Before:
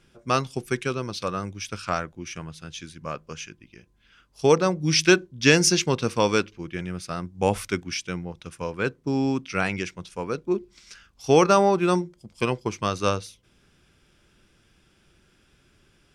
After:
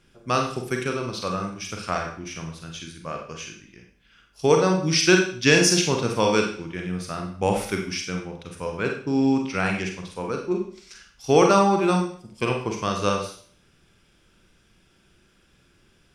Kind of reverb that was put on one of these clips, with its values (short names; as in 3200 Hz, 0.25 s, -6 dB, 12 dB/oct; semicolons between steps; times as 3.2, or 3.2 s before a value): Schroeder reverb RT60 0.5 s, combs from 33 ms, DRR 2 dB; gain -1 dB